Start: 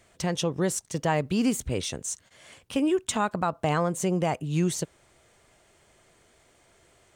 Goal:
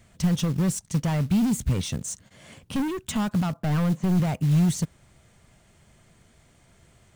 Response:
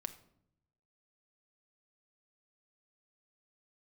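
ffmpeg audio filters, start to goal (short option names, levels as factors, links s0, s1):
-filter_complex "[0:a]asettb=1/sr,asplit=3[s0][s1][s2];[s0]atrim=end=2.024[s3];[s1]atrim=start=2.02:end=2.88,asetpts=PTS-STARTPTS,afade=t=in:d=0.004:c=qsin,afade=t=out:st=0.856:d=0.004:c=qsin,equalizer=f=390:t=o:w=2.2:g=6.5[s4];[s2]atrim=start=2.876[s5];[s3][s4]acrossfade=d=0.004:c1=hsin:c2=qsin[s6];[s6][s5]acrossfade=d=0.004:c1=qsin:c2=hsin,asettb=1/sr,asplit=3[s7][s8][s9];[s7]atrim=end=3.544[s10];[s8]atrim=start=3.54:end=4.2,asetpts=PTS-STARTPTS,afade=t=in:d=0.004:c=qsin,afade=t=out:st=0.656:d=0.004:c=qsin,highpass=120,lowpass=2100[s11];[s9]atrim=start=4.196[s12];[s10][s11]acrossfade=d=0.004:c1=hsin:c2=qsin[s13];[s13][s12]acrossfade=d=0.004:c1=qsin:c2=hsin,asoftclip=type=hard:threshold=0.0447,lowshelf=f=270:t=q:w=1.5:g=9,acrusher=bits=6:mode=log:mix=0:aa=0.000001"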